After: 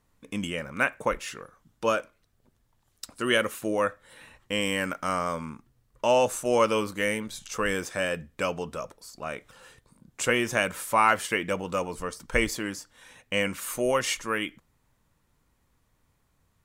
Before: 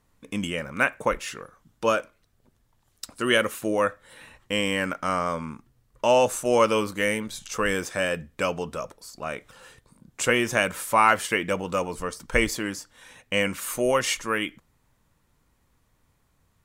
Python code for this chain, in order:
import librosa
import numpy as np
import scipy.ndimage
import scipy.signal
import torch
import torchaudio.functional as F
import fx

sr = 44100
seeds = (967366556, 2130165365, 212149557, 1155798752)

y = fx.high_shelf(x, sr, hz=7300.0, db=7.0, at=(4.61, 5.5))
y = y * librosa.db_to_amplitude(-2.5)